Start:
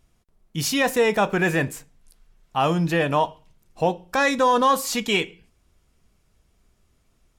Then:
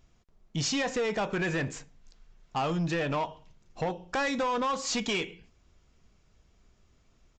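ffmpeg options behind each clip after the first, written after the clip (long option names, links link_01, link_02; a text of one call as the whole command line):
ffmpeg -i in.wav -af "acompressor=threshold=-22dB:ratio=6,aresample=16000,asoftclip=type=tanh:threshold=-24dB,aresample=44100" out.wav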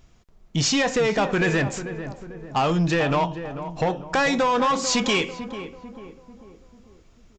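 ffmpeg -i in.wav -filter_complex "[0:a]asplit=2[link_01][link_02];[link_02]adelay=444,lowpass=frequency=1200:poles=1,volume=-10dB,asplit=2[link_03][link_04];[link_04]adelay=444,lowpass=frequency=1200:poles=1,volume=0.5,asplit=2[link_05][link_06];[link_06]adelay=444,lowpass=frequency=1200:poles=1,volume=0.5,asplit=2[link_07][link_08];[link_08]adelay=444,lowpass=frequency=1200:poles=1,volume=0.5,asplit=2[link_09][link_10];[link_10]adelay=444,lowpass=frequency=1200:poles=1,volume=0.5[link_11];[link_01][link_03][link_05][link_07][link_09][link_11]amix=inputs=6:normalize=0,volume=8dB" out.wav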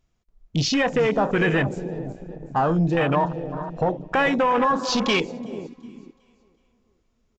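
ffmpeg -i in.wav -af "aecho=1:1:371|742|1113|1484:0.211|0.0845|0.0338|0.0135,afwtdn=0.0501,volume=1dB" out.wav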